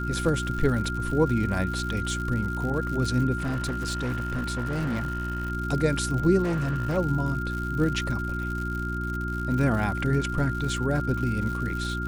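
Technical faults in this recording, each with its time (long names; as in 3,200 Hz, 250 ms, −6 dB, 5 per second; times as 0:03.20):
surface crackle 130 per second −32 dBFS
mains hum 60 Hz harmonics 6 −31 dBFS
whistle 1,400 Hz −32 dBFS
0:03.38–0:05.52: clipping −24.5 dBFS
0:06.43–0:06.98: clipping −23 dBFS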